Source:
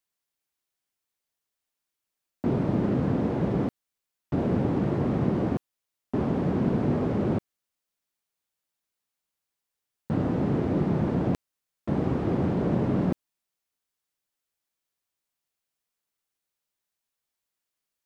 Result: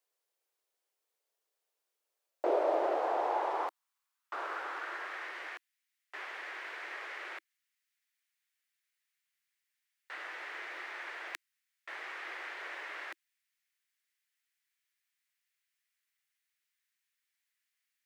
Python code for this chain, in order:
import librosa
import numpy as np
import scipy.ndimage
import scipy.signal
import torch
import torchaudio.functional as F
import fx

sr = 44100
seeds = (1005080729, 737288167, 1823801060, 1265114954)

y = fx.quant_float(x, sr, bits=8)
y = fx.filter_sweep_highpass(y, sr, from_hz=460.0, to_hz=1900.0, start_s=1.95, end_s=5.4, q=2.9)
y = scipy.signal.sosfilt(scipy.signal.ellip(4, 1.0, 40, 330.0, 'highpass', fs=sr, output='sos'), y)